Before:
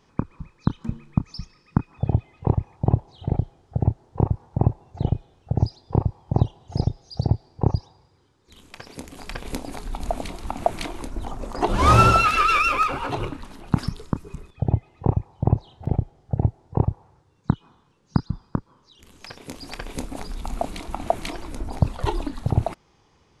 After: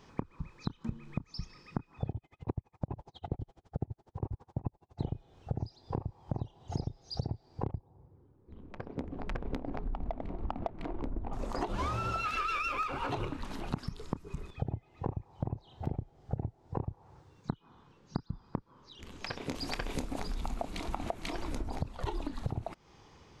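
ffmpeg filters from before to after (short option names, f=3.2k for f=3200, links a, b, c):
-filter_complex "[0:a]asplit=3[a][b][c];[a]afade=t=out:st=2.11:d=0.02[d];[b]aeval=exprs='val(0)*pow(10,-37*(0.5-0.5*cos(2*PI*12*n/s))/20)':c=same,afade=t=in:st=2.11:d=0.02,afade=t=out:st=5:d=0.02[e];[c]afade=t=in:st=5:d=0.02[f];[d][e][f]amix=inputs=3:normalize=0,asettb=1/sr,asplit=3[g][h][i];[g]atrim=end=7.644[j];[h]atrim=start=7.64:end=11.33,asetpts=PTS-STARTPTS,afade=t=in:d=0.004:c=qsin,afade=t=out:st=3.686:d=0.004:c=qsin,adynamicsmooth=sensitivity=1:basefreq=590[k];[i]atrim=start=11.326[l];[j][k]acrossfade=d=0.004:c1=hsin:c2=qsin[m];[m][l]acrossfade=d=0.004:c1=qsin:c2=hsin,asettb=1/sr,asplit=3[n][o][p];[n]atrim=end=17.514[q];[o]atrim=start=17.51:end=19.55,asetpts=PTS-STARTPTS,afade=t=in:d=0.004:c=qsin,afade=t=out:st=2.036:d=0.004:c=qsin,highshelf=f=7.2k:g=-11.5[r];[p]atrim=start=19.546[s];[q][r]acrossfade=d=0.004:c1=hsin:c2=qsin[t];[t][s]acrossfade=d=0.004:c1=qsin:c2=hsin,equalizer=f=10k:t=o:w=0.52:g=-7,alimiter=limit=-12dB:level=0:latency=1:release=449,acompressor=threshold=-35dB:ratio=6,volume=3dB"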